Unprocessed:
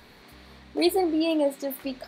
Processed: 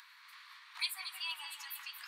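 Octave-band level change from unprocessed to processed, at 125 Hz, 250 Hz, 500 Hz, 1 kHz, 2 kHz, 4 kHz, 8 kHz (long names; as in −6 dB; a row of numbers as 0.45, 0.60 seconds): can't be measured, below −40 dB, below −40 dB, −17.5 dB, −3.0 dB, −4.5 dB, −6.0 dB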